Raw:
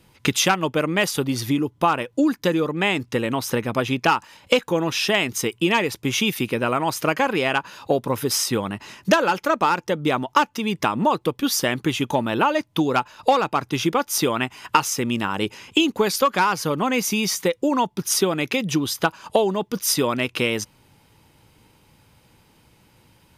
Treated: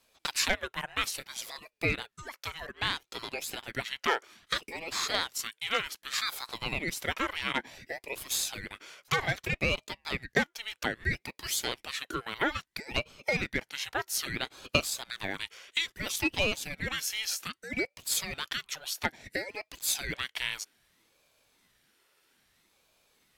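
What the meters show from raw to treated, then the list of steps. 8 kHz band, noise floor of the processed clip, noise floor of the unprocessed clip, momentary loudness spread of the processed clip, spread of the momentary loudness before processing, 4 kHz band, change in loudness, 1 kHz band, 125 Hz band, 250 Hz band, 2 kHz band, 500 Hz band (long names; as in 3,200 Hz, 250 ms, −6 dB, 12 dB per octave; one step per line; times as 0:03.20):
−8.0 dB, −76 dBFS, −58 dBFS, 8 LU, 4 LU, −6.5 dB, −10.5 dB, −16.0 dB, −12.5 dB, −18.0 dB, −6.5 dB, −16.0 dB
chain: high-pass filter 780 Hz 24 dB per octave
ring modulator whose carrier an LFO sweeps 970 Hz, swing 55%, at 0.61 Hz
level −5 dB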